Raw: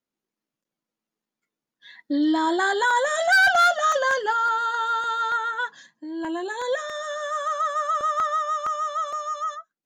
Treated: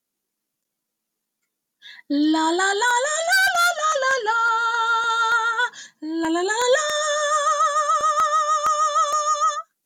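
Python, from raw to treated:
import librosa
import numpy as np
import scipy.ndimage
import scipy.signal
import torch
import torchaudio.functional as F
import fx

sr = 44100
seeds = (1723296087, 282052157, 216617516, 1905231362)

y = fx.peak_eq(x, sr, hz=12000.0, db=13.5, octaves=1.8)
y = fx.rider(y, sr, range_db=5, speed_s=0.5)
y = fx.air_absorb(y, sr, metres=52.0, at=(3.81, 5.1))
y = y * 10.0 ** (2.5 / 20.0)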